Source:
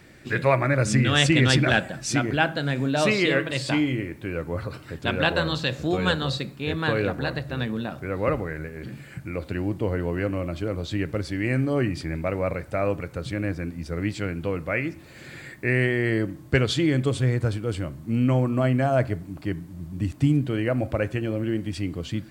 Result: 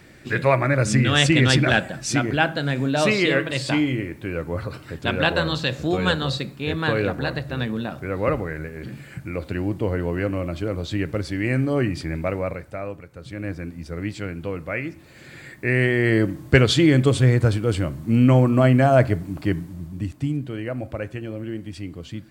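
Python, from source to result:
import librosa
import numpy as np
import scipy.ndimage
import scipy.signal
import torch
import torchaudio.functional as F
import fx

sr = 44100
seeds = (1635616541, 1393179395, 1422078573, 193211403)

y = fx.gain(x, sr, db=fx.line((12.29, 2.0), (13.09, -10.5), (13.49, -1.5), (15.29, -1.5), (16.25, 6.0), (19.59, 6.0), (20.25, -4.5)))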